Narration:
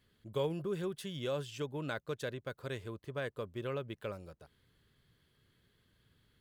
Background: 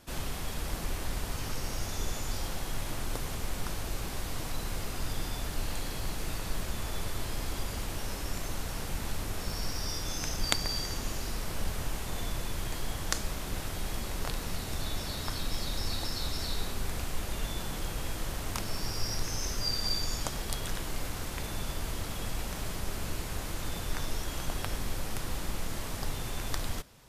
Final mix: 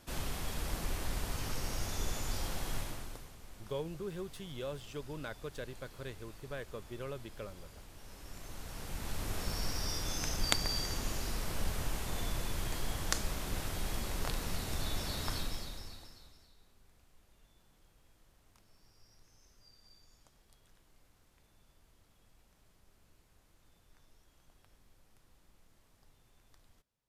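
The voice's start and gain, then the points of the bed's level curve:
3.35 s, -4.5 dB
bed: 2.77 s -2.5 dB
3.34 s -18 dB
7.92 s -18 dB
9.32 s -2 dB
15.37 s -2 dB
16.53 s -31.5 dB

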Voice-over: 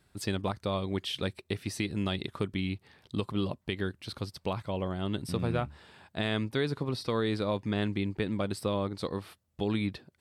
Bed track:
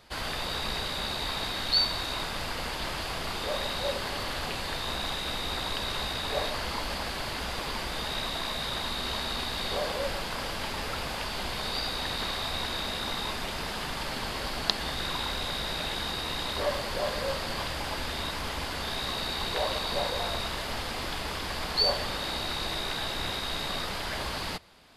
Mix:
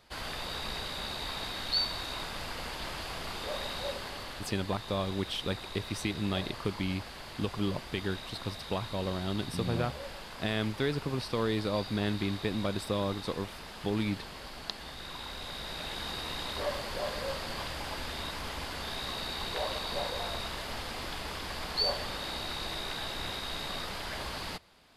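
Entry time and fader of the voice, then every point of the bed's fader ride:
4.25 s, -1.0 dB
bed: 3.80 s -5 dB
4.64 s -11 dB
15.00 s -11 dB
16.14 s -4.5 dB

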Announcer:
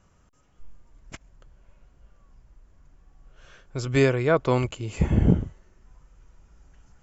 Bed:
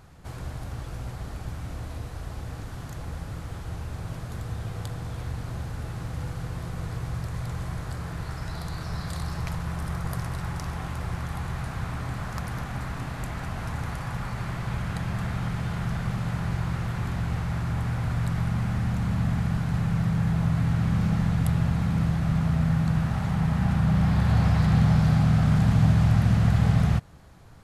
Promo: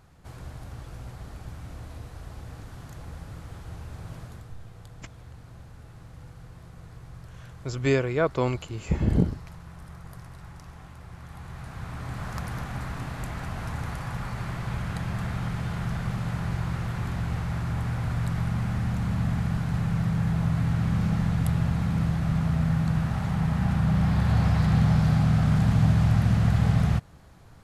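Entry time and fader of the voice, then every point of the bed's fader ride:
3.90 s, -3.0 dB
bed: 4.23 s -5 dB
4.56 s -13 dB
11.08 s -13 dB
12.28 s -1 dB

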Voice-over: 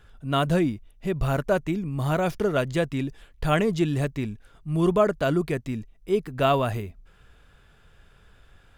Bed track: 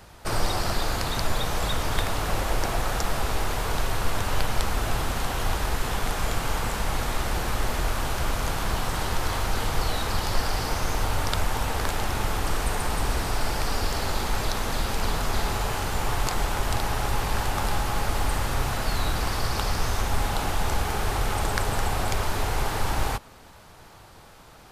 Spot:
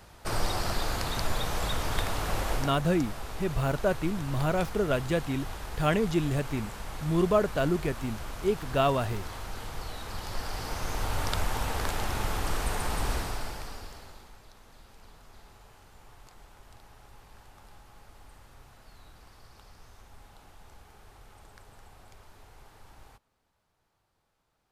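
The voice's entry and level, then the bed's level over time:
2.35 s, -3.5 dB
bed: 2.55 s -4 dB
2.79 s -12.5 dB
9.97 s -12.5 dB
11.25 s -4 dB
13.14 s -4 dB
14.41 s -27.5 dB

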